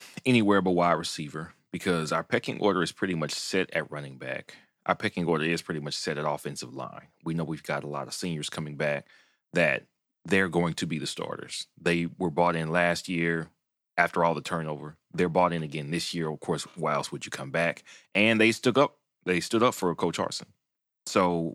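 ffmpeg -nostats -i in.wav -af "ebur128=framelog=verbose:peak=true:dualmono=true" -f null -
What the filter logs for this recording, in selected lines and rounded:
Integrated loudness:
  I:         -24.9 LUFS
  Threshold: -35.3 LUFS
Loudness range:
  LRA:         5.2 LU
  Threshold: -45.6 LUFS
  LRA low:   -28.2 LUFS
  LRA high:  -23.0 LUFS
True peak:
  Peak:       -5.5 dBFS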